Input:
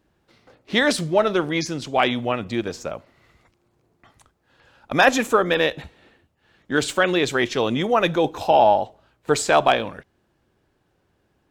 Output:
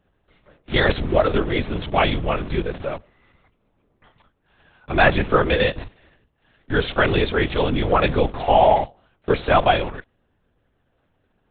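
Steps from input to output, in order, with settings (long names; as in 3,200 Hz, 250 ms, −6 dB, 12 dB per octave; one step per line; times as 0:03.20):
in parallel at −10.5 dB: comparator with hysteresis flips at −32.5 dBFS
on the sum: linear-prediction vocoder at 8 kHz whisper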